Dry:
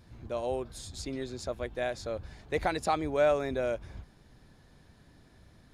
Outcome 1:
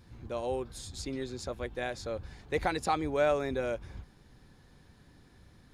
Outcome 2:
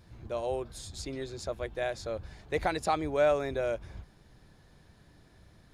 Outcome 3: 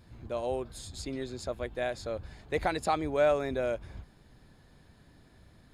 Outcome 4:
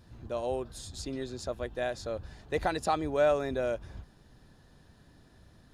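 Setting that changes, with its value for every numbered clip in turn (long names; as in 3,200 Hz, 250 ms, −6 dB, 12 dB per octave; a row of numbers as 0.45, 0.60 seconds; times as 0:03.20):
notch filter, centre frequency: 640, 250, 5,800, 2,200 Hertz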